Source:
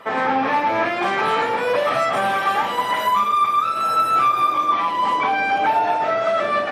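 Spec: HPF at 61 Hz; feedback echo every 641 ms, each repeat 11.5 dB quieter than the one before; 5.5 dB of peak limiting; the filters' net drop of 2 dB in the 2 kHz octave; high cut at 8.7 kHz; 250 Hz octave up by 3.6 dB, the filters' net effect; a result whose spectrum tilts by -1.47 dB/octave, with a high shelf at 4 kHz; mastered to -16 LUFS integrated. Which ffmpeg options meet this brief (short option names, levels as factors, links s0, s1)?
-af "highpass=61,lowpass=8700,equalizer=f=250:t=o:g=4.5,equalizer=f=2000:t=o:g=-4.5,highshelf=f=4000:g=8.5,alimiter=limit=0.224:level=0:latency=1,aecho=1:1:641|1282|1923:0.266|0.0718|0.0194,volume=1.68"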